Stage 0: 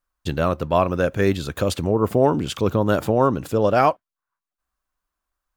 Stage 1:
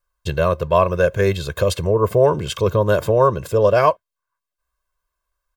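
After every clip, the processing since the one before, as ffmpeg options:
-af "aecho=1:1:1.9:0.86"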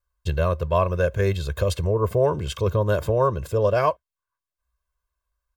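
-af "equalizer=f=62:t=o:w=1:g=13,volume=0.501"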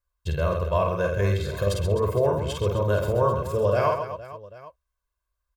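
-af "aecho=1:1:50|130|258|462.8|790.5:0.631|0.398|0.251|0.158|0.1,volume=0.668"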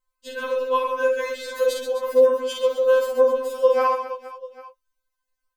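-af "afftfilt=real='re*3.46*eq(mod(b,12),0)':imag='im*3.46*eq(mod(b,12),0)':win_size=2048:overlap=0.75,volume=1.88"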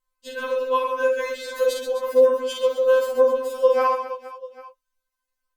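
-ar 48000 -c:a libopus -b:a 64k

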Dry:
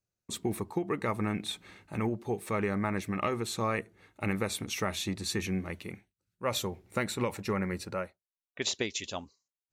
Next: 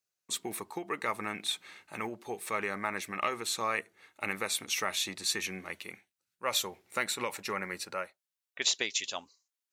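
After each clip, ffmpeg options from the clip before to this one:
-af "highpass=f=1300:p=1,volume=1.68"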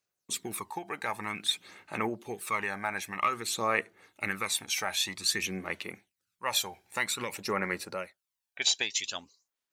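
-af "aphaser=in_gain=1:out_gain=1:delay=1.3:decay=0.54:speed=0.52:type=sinusoidal"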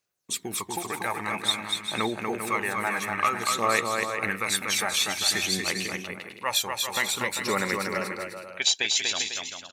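-af "aecho=1:1:240|396|497.4|563.3|606.2:0.631|0.398|0.251|0.158|0.1,volume=1.5"

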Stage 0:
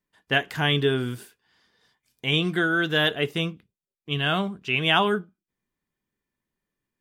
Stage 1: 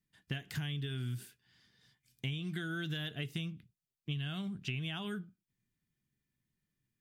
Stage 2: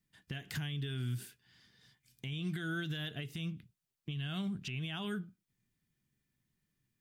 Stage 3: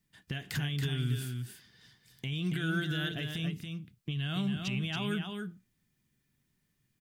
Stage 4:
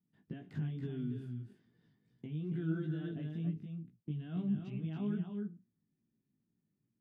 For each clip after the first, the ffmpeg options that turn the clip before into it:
-filter_complex "[0:a]acrossover=split=1300|3100[s0][s1][s2];[s0]acompressor=threshold=0.0355:ratio=4[s3];[s1]acompressor=threshold=0.0158:ratio=4[s4];[s2]acompressor=threshold=0.02:ratio=4[s5];[s3][s4][s5]amix=inputs=3:normalize=0,equalizer=f=125:t=o:w=1:g=10,equalizer=f=500:t=o:w=1:g=-9,equalizer=f=1000:t=o:w=1:g=-9,acompressor=threshold=0.0224:ratio=6,volume=0.794"
-af "alimiter=level_in=2.51:limit=0.0631:level=0:latency=1:release=121,volume=0.398,volume=1.41"
-af "aecho=1:1:278:0.531,volume=1.68"
-af "bandpass=f=250:t=q:w=1.3:csg=0,flanger=delay=17:depth=2.8:speed=2.3,volume=1.41"

